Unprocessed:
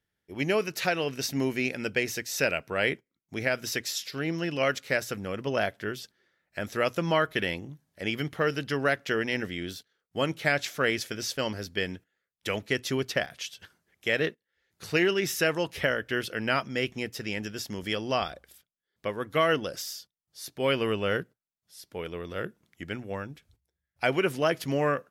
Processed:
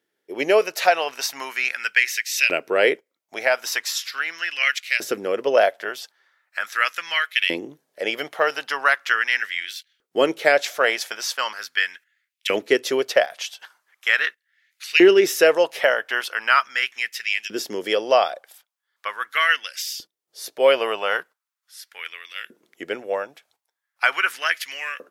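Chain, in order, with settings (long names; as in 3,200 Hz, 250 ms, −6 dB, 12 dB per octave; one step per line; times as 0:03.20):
auto-filter high-pass saw up 0.4 Hz 320–2,700 Hz
level +6 dB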